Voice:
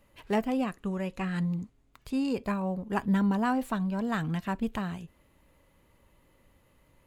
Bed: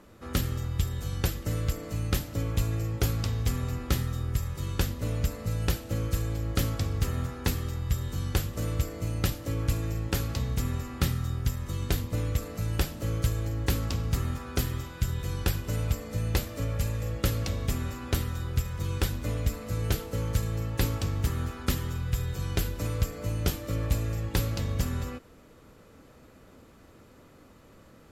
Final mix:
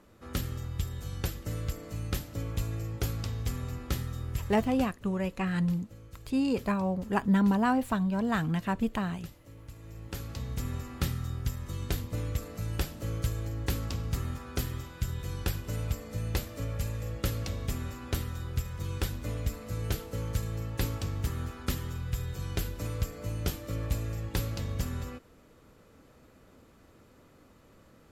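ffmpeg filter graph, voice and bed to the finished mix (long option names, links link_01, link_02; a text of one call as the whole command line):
ffmpeg -i stem1.wav -i stem2.wav -filter_complex "[0:a]adelay=4200,volume=1.5dB[link_01];[1:a]volume=11dB,afade=type=out:start_time=4.53:duration=0.41:silence=0.177828,afade=type=in:start_time=9.75:duration=1.01:silence=0.158489[link_02];[link_01][link_02]amix=inputs=2:normalize=0" out.wav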